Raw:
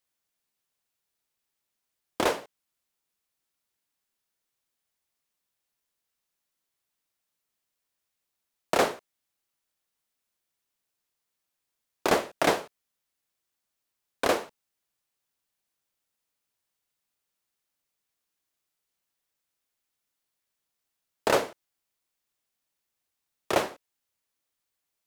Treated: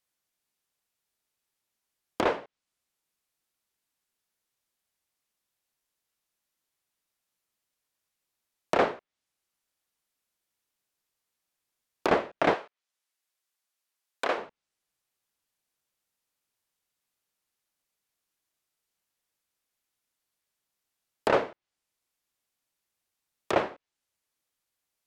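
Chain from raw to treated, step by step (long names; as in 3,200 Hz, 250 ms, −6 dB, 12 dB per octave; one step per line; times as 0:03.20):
treble cut that deepens with the level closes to 2,600 Hz, closed at −28.5 dBFS
0:12.54–0:14.38: high-pass filter 750 Hz 6 dB per octave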